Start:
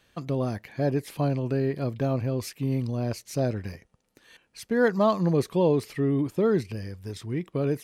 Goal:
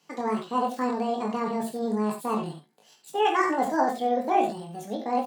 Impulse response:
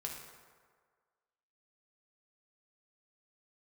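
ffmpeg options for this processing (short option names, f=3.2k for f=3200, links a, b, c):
-filter_complex "[0:a]highpass=f=93:w=0.5412,highpass=f=93:w=1.3066,highshelf=f=6.9k:g=-6,asplit=2[a][b];[b]adelay=33,volume=-4dB[c];[a][c]amix=inputs=2:normalize=0,asetrate=77175,aresample=44100[d];[1:a]atrim=start_sample=2205,atrim=end_sample=3969[e];[d][e]afir=irnorm=-1:irlink=0,atempo=0.85"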